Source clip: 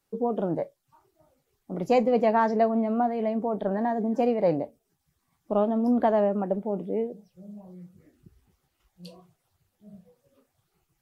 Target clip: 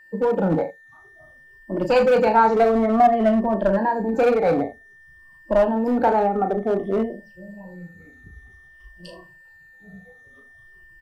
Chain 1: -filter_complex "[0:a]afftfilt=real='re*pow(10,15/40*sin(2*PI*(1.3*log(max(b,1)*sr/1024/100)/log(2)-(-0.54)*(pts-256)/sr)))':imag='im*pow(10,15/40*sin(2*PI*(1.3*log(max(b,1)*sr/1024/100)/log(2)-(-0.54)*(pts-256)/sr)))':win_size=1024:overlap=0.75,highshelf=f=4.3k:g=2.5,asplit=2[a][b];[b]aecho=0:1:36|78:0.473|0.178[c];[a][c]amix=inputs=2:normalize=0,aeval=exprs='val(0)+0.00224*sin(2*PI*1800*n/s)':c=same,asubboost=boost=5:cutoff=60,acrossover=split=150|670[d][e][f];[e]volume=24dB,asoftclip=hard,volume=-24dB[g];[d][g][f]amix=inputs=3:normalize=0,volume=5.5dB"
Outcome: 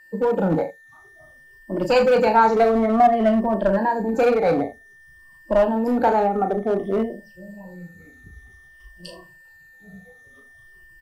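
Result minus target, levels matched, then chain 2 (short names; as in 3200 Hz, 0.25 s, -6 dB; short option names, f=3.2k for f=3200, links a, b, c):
8000 Hz band +3.5 dB
-filter_complex "[0:a]afftfilt=real='re*pow(10,15/40*sin(2*PI*(1.3*log(max(b,1)*sr/1024/100)/log(2)-(-0.54)*(pts-256)/sr)))':imag='im*pow(10,15/40*sin(2*PI*(1.3*log(max(b,1)*sr/1024/100)/log(2)-(-0.54)*(pts-256)/sr)))':win_size=1024:overlap=0.75,highshelf=f=4.3k:g=-6.5,asplit=2[a][b];[b]aecho=0:1:36|78:0.473|0.178[c];[a][c]amix=inputs=2:normalize=0,aeval=exprs='val(0)+0.00224*sin(2*PI*1800*n/s)':c=same,asubboost=boost=5:cutoff=60,acrossover=split=150|670[d][e][f];[e]volume=24dB,asoftclip=hard,volume=-24dB[g];[d][g][f]amix=inputs=3:normalize=0,volume=5.5dB"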